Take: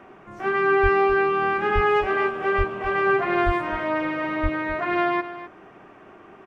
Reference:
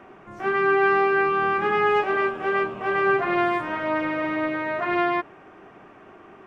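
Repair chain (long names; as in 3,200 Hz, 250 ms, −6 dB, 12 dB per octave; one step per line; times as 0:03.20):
high-pass at the plosives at 0:00.82/0:01.74/0:02.57/0:03.45/0:04.42
echo removal 257 ms −13.5 dB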